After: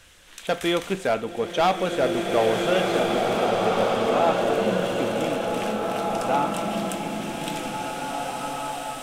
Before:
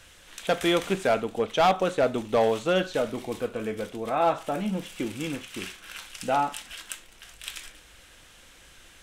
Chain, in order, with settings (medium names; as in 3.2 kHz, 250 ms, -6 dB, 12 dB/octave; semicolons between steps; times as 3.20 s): swelling reverb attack 2230 ms, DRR -2 dB